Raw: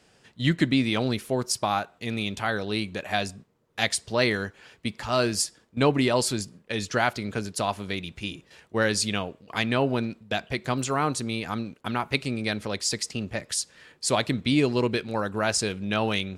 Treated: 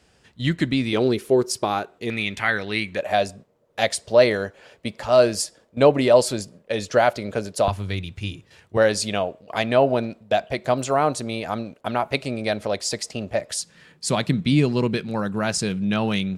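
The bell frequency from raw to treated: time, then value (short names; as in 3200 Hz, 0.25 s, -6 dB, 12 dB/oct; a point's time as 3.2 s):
bell +13 dB 0.72 oct
62 Hz
from 0.93 s 390 Hz
from 2.1 s 2000 Hz
from 2.97 s 580 Hz
from 7.68 s 100 Hz
from 8.77 s 630 Hz
from 13.61 s 170 Hz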